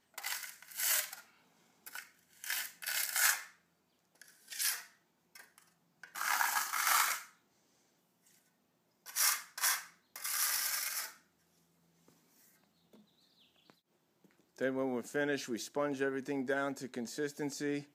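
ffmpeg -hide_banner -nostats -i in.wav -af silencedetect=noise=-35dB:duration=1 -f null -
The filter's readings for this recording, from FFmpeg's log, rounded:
silence_start: 3.38
silence_end: 4.52 | silence_duration: 1.14
silence_start: 4.76
silence_end: 6.16 | silence_duration: 1.40
silence_start: 7.18
silence_end: 9.16 | silence_duration: 1.98
silence_start: 11.06
silence_end: 14.61 | silence_duration: 3.55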